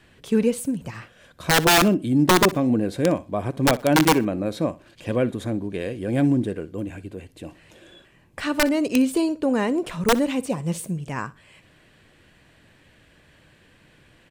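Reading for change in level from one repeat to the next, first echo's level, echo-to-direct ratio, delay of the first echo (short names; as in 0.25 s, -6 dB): -12.5 dB, -19.0 dB, -19.0 dB, 61 ms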